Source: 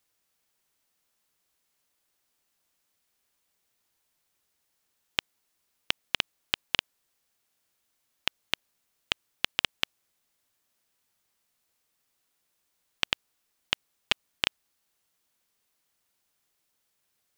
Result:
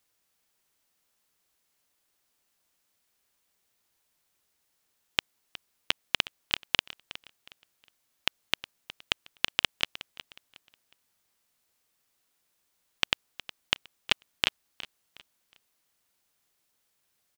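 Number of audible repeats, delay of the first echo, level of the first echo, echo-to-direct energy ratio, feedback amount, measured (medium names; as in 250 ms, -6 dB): 2, 364 ms, -16.5 dB, -16.0 dB, 30%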